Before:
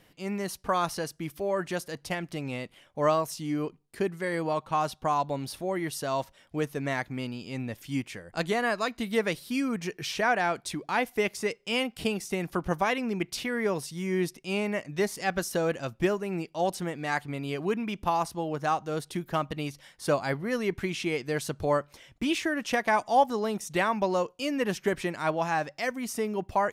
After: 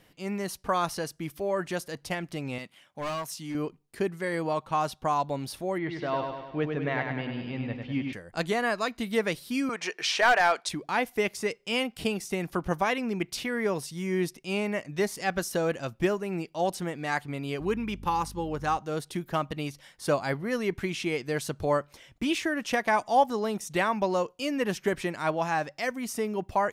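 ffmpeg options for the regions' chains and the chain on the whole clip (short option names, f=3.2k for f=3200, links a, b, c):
-filter_complex "[0:a]asettb=1/sr,asplit=3[a][b][c];[a]atrim=end=2.584[d];[b]atrim=start=2.58:end=3.55,asetpts=PTS-STARTPTS,afade=t=in:d=0.004:c=qsin,afade=t=out:st=0.966:d=0.004:c=qsin,highpass=160,equalizer=f=430:t=o:w=1.2:g=-8.5,volume=29.5dB,asoftclip=hard,volume=-29.5dB[e];[c]atrim=start=3.546[f];[d][e]acrossfade=d=0.004:c1=hsin:c2=qsin[g];[g][f]acrossfade=d=0.004:c1=qsin:c2=hsin,asettb=1/sr,asplit=3[h][i][j];[h]atrim=end=5.784[k];[i]atrim=start=5.78:end=8.13,asetpts=PTS-STARTPTS,afade=t=in:d=0.004:c=qsin,afade=t=out:st=2.346:d=0.004:c=qsin,lowpass=f=3.5k:w=0.5412,lowpass=f=3.5k:w=1.3066,aecho=1:1:99|198|297|396|495|594|693:0.562|0.315|0.176|0.0988|0.0553|0.031|0.0173,atrim=end_sample=103635[l];[j]atrim=start=8.126[m];[k][l]acrossfade=d=0.004:c1=hsin:c2=qsin[n];[n][m]acrossfade=d=0.004:c1=qsin:c2=hsin,asettb=1/sr,asplit=3[o][p][q];[o]atrim=end=9.694[r];[p]atrim=start=9.69:end=10.69,asetpts=PTS-STARTPTS,afade=t=in:d=0.004:c=qsin,afade=t=out:st=0.996:d=0.004:c=qsin,acontrast=78,highpass=610,lowpass=7k,aeval=exprs='clip(val(0),-1,0.158)':c=same[s];[q]atrim=start=10.686[t];[r][s]acrossfade=d=0.004:c1=hsin:c2=qsin[u];[u][t]acrossfade=d=0.004:c1=qsin:c2=hsin,asettb=1/sr,asplit=3[v][w][x];[v]atrim=end=17.604[y];[w]atrim=start=17.6:end=18.78,asetpts=PTS-STARTPTS,afade=t=in:d=0.004:c=qsin,afade=t=out:st=1.176:d=0.004:c=qsin,asuperstop=centerf=670:order=4:qfactor=5.8,aeval=exprs='val(0)+0.00708*(sin(2*PI*50*n/s)+sin(2*PI*2*50*n/s)/2+sin(2*PI*3*50*n/s)/3+sin(2*PI*4*50*n/s)/4+sin(2*PI*5*50*n/s)/5)':c=same[z];[x]atrim=start=18.776[aa];[y][z]acrossfade=d=0.004:c1=hsin:c2=qsin[ab];[ab][aa]acrossfade=d=0.004:c1=qsin:c2=hsin"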